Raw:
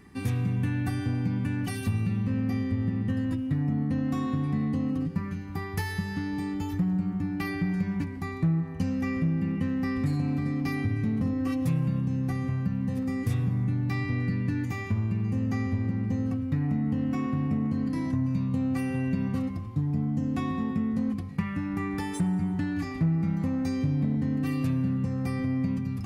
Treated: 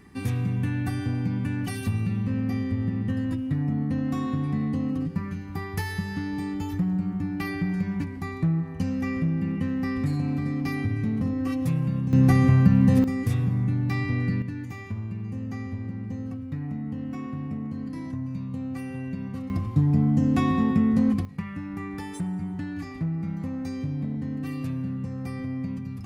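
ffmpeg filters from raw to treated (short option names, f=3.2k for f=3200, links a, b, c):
-af "asetnsamples=n=441:p=0,asendcmd='12.13 volume volume 11.5dB;13.04 volume volume 2.5dB;14.42 volume volume -5dB;19.5 volume volume 7dB;21.25 volume volume -3.5dB',volume=1dB"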